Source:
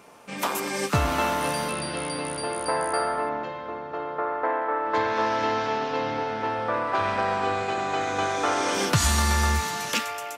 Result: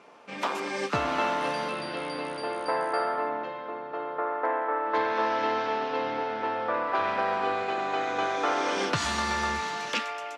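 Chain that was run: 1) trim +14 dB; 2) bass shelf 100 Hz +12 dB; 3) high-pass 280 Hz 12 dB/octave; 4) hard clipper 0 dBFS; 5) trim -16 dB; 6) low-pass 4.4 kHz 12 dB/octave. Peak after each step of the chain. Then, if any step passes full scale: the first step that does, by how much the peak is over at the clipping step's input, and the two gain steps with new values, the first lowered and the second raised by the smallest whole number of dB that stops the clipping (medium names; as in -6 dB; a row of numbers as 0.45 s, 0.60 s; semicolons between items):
+4.5 dBFS, +8.5 dBFS, +3.5 dBFS, 0.0 dBFS, -16.0 dBFS, -15.5 dBFS; step 1, 3.5 dB; step 1 +10 dB, step 5 -12 dB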